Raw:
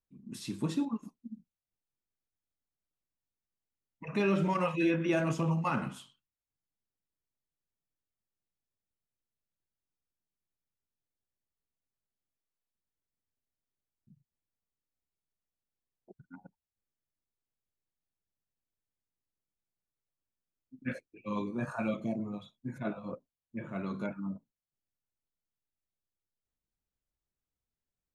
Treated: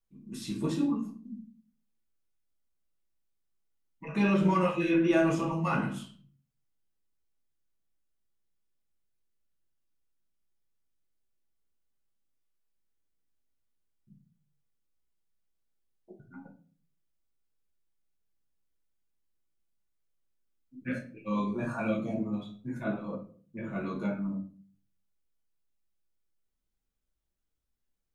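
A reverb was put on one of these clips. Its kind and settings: simulated room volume 33 m³, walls mixed, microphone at 0.65 m; trim -1.5 dB

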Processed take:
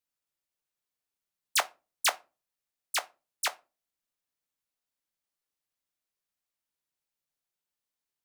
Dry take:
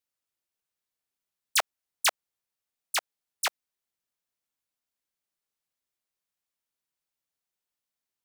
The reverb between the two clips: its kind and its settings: simulated room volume 120 m³, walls furnished, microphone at 0.37 m; trim -2 dB

